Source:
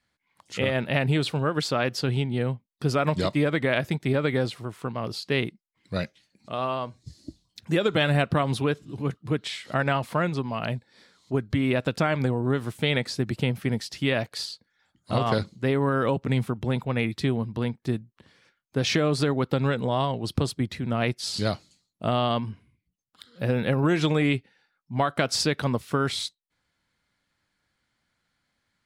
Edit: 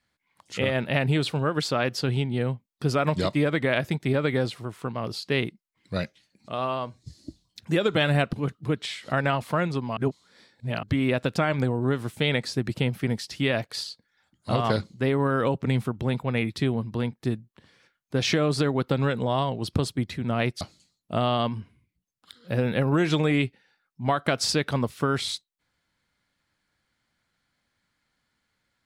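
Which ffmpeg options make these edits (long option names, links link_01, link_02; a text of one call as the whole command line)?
ffmpeg -i in.wav -filter_complex "[0:a]asplit=5[link_01][link_02][link_03][link_04][link_05];[link_01]atrim=end=8.332[link_06];[link_02]atrim=start=8.948:end=10.592[link_07];[link_03]atrim=start=10.588:end=11.452,asetpts=PTS-STARTPTS,areverse[link_08];[link_04]atrim=start=11.448:end=21.232[link_09];[link_05]atrim=start=21.518[link_10];[link_06][link_07]acrossfade=duration=0.004:curve1=hsin:curve2=hsin[link_11];[link_11][link_08]acrossfade=duration=0.004:curve1=hsin:curve2=hsin[link_12];[link_12][link_09]acrossfade=duration=0.004:curve1=hsin:curve2=hsin[link_13];[link_13][link_10]acrossfade=duration=0.004:curve1=hsin:curve2=hsin" out.wav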